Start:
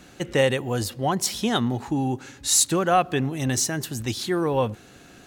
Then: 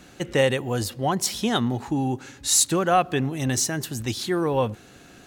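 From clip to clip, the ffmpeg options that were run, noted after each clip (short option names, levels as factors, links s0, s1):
-af anull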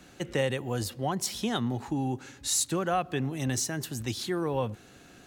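-filter_complex "[0:a]acrossover=split=170[s0][s1];[s1]acompressor=threshold=0.0501:ratio=1.5[s2];[s0][s2]amix=inputs=2:normalize=0,volume=0.596"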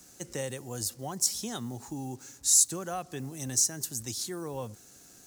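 -af "acrusher=bits=8:mix=0:aa=0.5,highshelf=f=4400:t=q:w=1.5:g=12,volume=0.422"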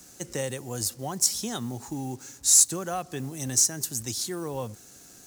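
-af "acrusher=bits=6:mode=log:mix=0:aa=0.000001,volume=1.58"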